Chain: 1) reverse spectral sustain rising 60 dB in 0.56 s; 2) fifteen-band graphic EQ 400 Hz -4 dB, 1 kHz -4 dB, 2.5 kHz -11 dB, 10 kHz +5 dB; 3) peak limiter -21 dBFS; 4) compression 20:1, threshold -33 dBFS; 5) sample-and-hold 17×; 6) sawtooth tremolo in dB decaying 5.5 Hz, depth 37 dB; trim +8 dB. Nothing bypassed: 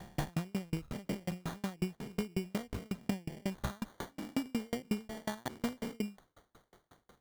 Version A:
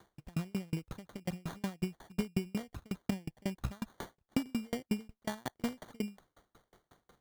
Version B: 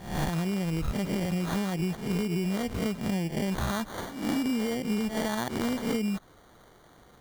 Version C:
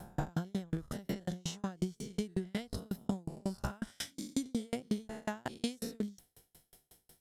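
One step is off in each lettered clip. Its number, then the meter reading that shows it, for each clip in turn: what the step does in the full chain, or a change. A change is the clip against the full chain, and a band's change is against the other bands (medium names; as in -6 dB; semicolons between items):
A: 1, crest factor change +1.5 dB; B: 6, momentary loudness spread change -2 LU; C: 5, distortion -5 dB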